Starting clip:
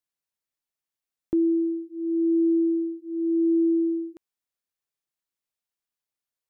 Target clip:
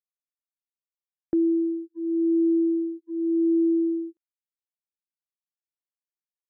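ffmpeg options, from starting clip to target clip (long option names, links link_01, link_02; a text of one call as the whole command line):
ffmpeg -i in.wav -af "agate=range=-34dB:threshold=-35dB:ratio=16:detection=peak" out.wav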